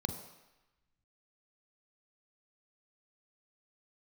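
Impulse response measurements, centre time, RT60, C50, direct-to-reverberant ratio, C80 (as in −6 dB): 21 ms, 1.0 s, 8.0 dB, 6.0 dB, 10.0 dB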